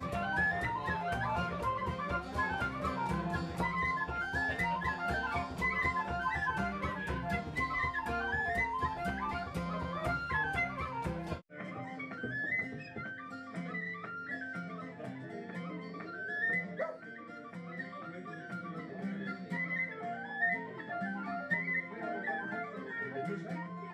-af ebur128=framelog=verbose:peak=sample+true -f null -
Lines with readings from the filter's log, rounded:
Integrated loudness:
  I:         -36.0 LUFS
  Threshold: -46.1 LUFS
Loudness range:
  LRA:         6.0 LU
  Threshold: -56.2 LUFS
  LRA low:   -39.8 LUFS
  LRA high:  -33.8 LUFS
Sample peak:
  Peak:      -21.0 dBFS
True peak:
  Peak:      -21.0 dBFS